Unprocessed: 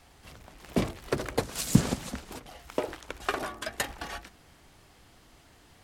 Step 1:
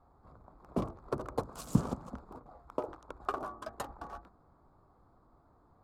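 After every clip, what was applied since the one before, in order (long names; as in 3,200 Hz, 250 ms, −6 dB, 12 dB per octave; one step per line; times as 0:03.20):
adaptive Wiener filter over 15 samples
high shelf with overshoot 1,500 Hz −7.5 dB, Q 3
level −6.5 dB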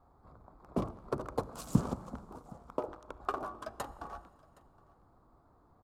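single-tap delay 767 ms −24 dB
four-comb reverb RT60 2.4 s, combs from 29 ms, DRR 19.5 dB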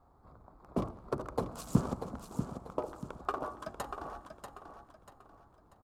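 repeating echo 639 ms, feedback 35%, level −8 dB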